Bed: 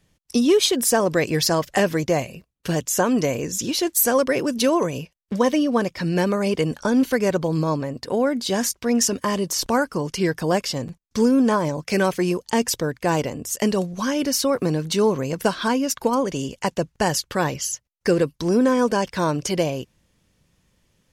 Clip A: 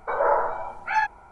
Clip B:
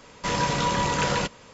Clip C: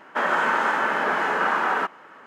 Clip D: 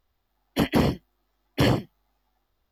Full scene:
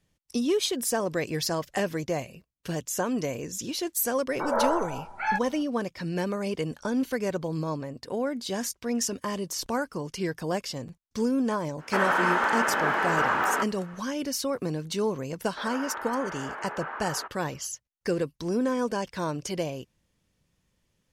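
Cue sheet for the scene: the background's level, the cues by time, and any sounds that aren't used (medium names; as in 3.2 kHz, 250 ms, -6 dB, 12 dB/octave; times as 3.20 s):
bed -8.5 dB
4.32 s: add A -4 dB
11.77 s: add C -2.5 dB, fades 0.05 s + crackling interface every 0.25 s, samples 64, zero, from 0.67 s
15.41 s: add C -14 dB + band-pass 320–2500 Hz
not used: B, D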